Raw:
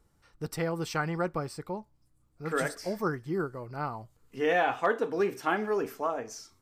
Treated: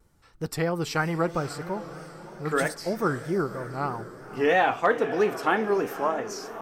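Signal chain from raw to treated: diffused feedback echo 0.549 s, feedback 49%, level -13 dB; vibrato 3.1 Hz 87 cents; gain +4.5 dB

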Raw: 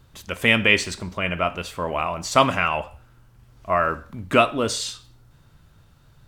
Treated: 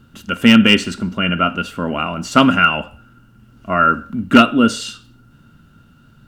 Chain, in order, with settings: small resonant body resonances 230/1400/2800 Hz, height 18 dB, ringing for 35 ms; requantised 12-bit, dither none; gain -1 dB

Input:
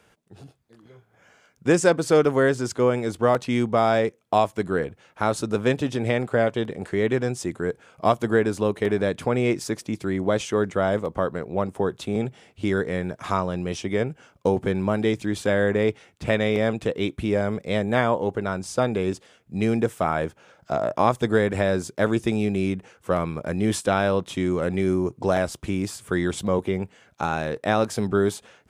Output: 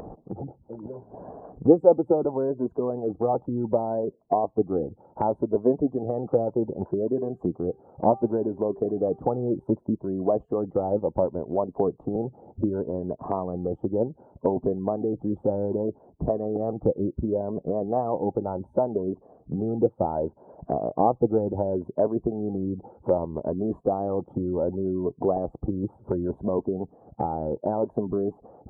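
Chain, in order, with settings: moving spectral ripple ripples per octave 1.5, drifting +0.67 Hz, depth 10 dB; spectral gate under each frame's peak -30 dB strong; elliptic low-pass 870 Hz, stop band 60 dB; harmonic-percussive split harmonic -12 dB; 7.02–9.75 de-hum 392 Hz, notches 27; upward compressor, threshold -24 dBFS; gain +2.5 dB

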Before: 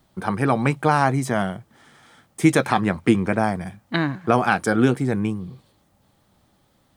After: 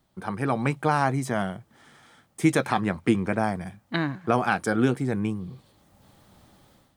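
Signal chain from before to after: AGC gain up to 13.5 dB; gain -7.5 dB

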